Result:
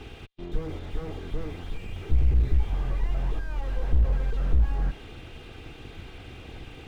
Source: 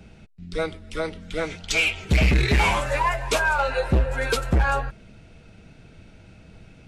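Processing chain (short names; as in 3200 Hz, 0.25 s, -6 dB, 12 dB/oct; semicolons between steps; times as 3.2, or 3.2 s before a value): minimum comb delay 2.5 ms; synth low-pass 3400 Hz, resonance Q 3.5; slew limiter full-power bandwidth 4 Hz; gain +7 dB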